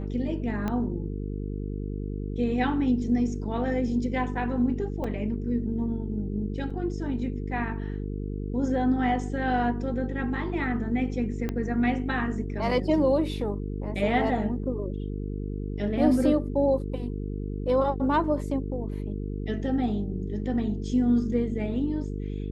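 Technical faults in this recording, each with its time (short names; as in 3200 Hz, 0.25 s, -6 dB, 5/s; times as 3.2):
buzz 50 Hz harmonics 9 -32 dBFS
0.68 pop -17 dBFS
5.04 gap 4.1 ms
6.7–6.71 gap 5.3 ms
11.49 pop -17 dBFS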